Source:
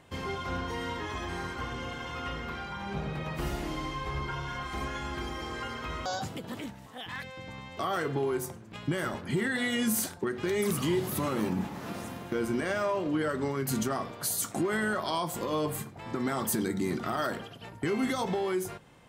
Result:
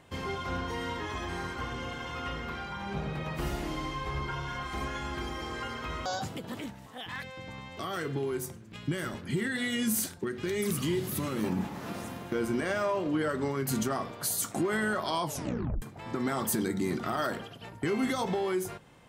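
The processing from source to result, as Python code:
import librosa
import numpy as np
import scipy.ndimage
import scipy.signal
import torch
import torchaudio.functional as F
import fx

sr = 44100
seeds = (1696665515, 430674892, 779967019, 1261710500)

y = fx.peak_eq(x, sr, hz=810.0, db=-7.5, octaves=1.6, at=(7.79, 11.44))
y = fx.edit(y, sr, fx.tape_stop(start_s=15.23, length_s=0.59), tone=tone)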